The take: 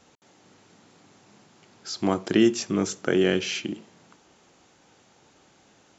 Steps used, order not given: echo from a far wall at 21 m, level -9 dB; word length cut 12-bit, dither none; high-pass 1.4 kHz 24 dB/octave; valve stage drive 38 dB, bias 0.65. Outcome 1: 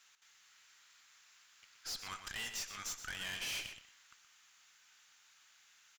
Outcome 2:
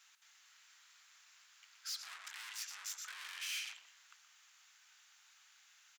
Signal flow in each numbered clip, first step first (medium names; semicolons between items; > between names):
high-pass > word length cut > valve stage > echo from a far wall; echo from a far wall > word length cut > valve stage > high-pass